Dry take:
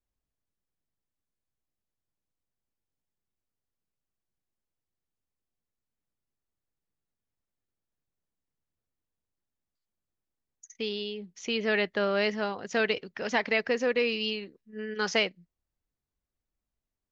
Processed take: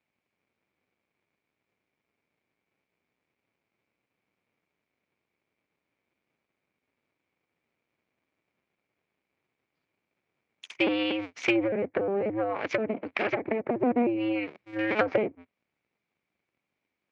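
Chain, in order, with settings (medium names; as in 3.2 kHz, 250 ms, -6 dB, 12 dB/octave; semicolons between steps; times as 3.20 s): cycle switcher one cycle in 2, inverted; low-pass that closes with the level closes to 410 Hz, closed at -24.5 dBFS; peaking EQ 2.3 kHz +14 dB 0.31 oct; 11.59–13.83 s: compression 3:1, threshold -33 dBFS, peak gain reduction 6.5 dB; overload inside the chain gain 22 dB; band-pass 210–3600 Hz; trim +8.5 dB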